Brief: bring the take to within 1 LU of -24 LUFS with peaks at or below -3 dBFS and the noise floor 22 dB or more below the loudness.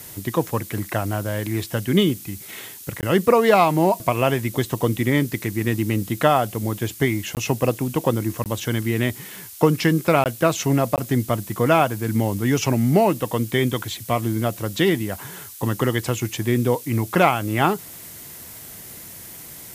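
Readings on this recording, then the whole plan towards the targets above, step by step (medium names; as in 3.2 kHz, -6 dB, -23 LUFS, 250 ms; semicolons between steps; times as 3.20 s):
dropouts 5; longest dropout 18 ms; noise floor -39 dBFS; noise floor target -44 dBFS; loudness -21.5 LUFS; peak level -1.5 dBFS; loudness target -24.0 LUFS
-> interpolate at 3.01/7.35/8.44/10.24/10.96 s, 18 ms; noise reduction 6 dB, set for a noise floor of -39 dBFS; trim -2.5 dB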